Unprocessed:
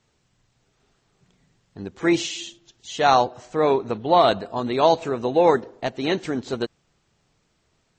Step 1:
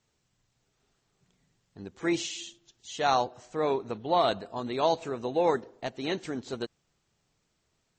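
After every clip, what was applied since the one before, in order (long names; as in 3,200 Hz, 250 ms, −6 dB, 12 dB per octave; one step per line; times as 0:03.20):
high-shelf EQ 5,600 Hz +6 dB
level −8.5 dB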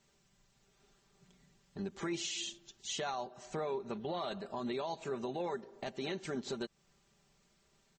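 comb filter 5.1 ms, depth 64%
downward compressor 3 to 1, threshold −38 dBFS, peak gain reduction 15 dB
brickwall limiter −31.5 dBFS, peak gain reduction 7.5 dB
level +2.5 dB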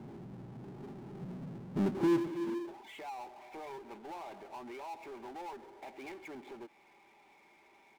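high-pass filter sweep 110 Hz → 2,500 Hz, 0:02.38–0:02.97
formant resonators in series u
power curve on the samples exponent 0.5
level +12 dB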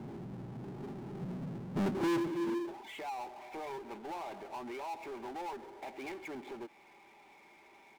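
soft clipping −32 dBFS, distortion −9 dB
level +3.5 dB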